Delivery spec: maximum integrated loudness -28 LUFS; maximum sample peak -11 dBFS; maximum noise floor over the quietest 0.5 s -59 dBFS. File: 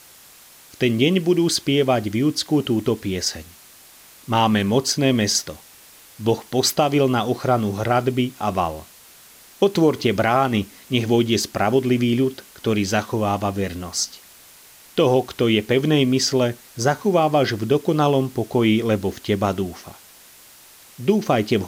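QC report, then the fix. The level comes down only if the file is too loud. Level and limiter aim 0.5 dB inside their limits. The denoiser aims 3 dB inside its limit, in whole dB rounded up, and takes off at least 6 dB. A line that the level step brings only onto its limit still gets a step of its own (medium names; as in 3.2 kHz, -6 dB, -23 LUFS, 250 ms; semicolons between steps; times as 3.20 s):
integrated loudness -20.5 LUFS: fail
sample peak -5.0 dBFS: fail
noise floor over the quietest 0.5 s -47 dBFS: fail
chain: noise reduction 7 dB, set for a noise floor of -47 dBFS; trim -8 dB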